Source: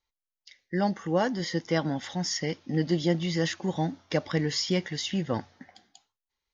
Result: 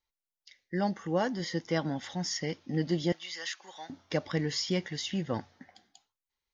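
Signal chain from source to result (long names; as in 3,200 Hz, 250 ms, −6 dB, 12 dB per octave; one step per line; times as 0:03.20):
0:03.12–0:03.90: high-pass filter 1,200 Hz 12 dB per octave
level −3.5 dB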